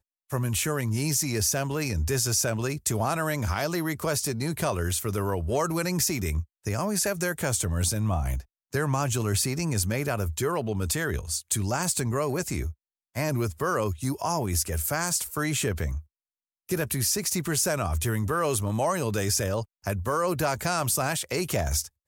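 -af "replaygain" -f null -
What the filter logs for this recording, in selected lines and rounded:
track_gain = +10.8 dB
track_peak = 0.190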